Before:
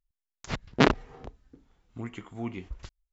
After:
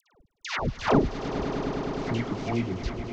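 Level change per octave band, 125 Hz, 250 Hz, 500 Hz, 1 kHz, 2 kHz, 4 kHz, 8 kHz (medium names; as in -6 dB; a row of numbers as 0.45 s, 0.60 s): +5.0 dB, +3.5 dB, +4.0 dB, +3.0 dB, -0.5 dB, -1.0 dB, no reading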